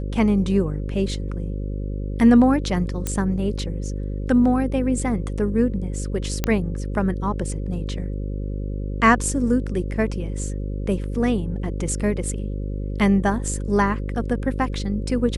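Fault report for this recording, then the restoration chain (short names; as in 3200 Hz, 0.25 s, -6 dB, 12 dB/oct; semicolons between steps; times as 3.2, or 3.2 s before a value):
buzz 50 Hz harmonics 11 -27 dBFS
3.07 pop -10 dBFS
6.44 pop -6 dBFS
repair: de-click; de-hum 50 Hz, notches 11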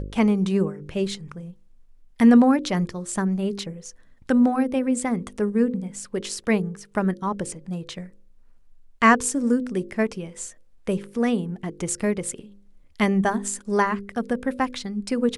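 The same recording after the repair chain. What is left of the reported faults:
none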